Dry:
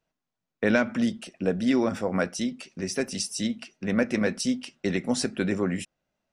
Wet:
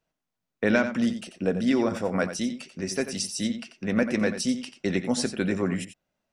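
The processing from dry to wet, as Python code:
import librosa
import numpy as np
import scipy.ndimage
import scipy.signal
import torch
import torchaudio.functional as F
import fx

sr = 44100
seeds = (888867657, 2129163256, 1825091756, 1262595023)

y = x + 10.0 ** (-11.0 / 20.0) * np.pad(x, (int(89 * sr / 1000.0), 0))[:len(x)]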